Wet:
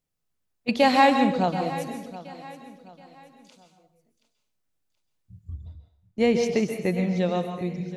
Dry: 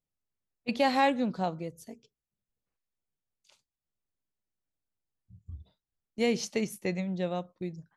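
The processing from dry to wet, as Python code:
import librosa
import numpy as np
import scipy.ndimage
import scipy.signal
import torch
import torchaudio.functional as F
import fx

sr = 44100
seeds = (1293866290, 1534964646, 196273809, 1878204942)

p1 = fx.high_shelf(x, sr, hz=3100.0, db=-10.0, at=(5.56, 7.04))
p2 = p1 + fx.echo_feedback(p1, sr, ms=726, feedback_pct=37, wet_db=-16.0, dry=0)
p3 = fx.rev_plate(p2, sr, seeds[0], rt60_s=0.55, hf_ratio=0.9, predelay_ms=120, drr_db=5.5)
y = p3 * 10.0 ** (6.5 / 20.0)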